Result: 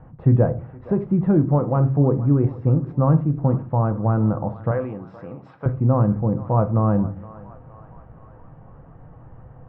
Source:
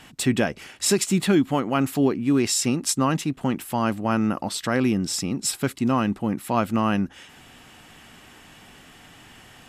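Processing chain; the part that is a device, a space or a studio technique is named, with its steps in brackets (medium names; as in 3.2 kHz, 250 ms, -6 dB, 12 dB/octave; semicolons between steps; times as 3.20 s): under water (low-pass 1.1 kHz 24 dB/octave; peaking EQ 510 Hz +9 dB 0.32 oct); 4.71–5.66 s: frequency weighting ITU-R 468; resonant low shelf 170 Hz +10.5 dB, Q 1.5; thinning echo 468 ms, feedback 67%, high-pass 600 Hz, level -16 dB; simulated room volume 240 m³, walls furnished, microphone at 0.63 m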